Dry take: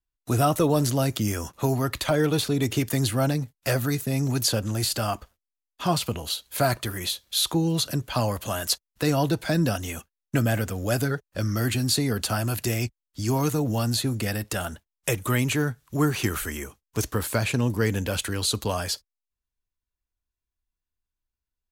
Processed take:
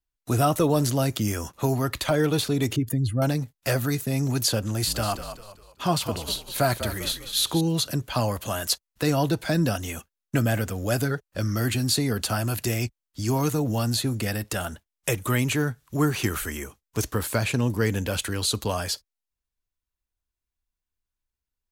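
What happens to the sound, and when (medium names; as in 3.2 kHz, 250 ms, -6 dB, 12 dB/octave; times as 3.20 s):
2.76–3.22 s: spectral contrast enhancement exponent 1.9
4.67–7.61 s: frequency-shifting echo 198 ms, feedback 38%, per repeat -52 Hz, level -10 dB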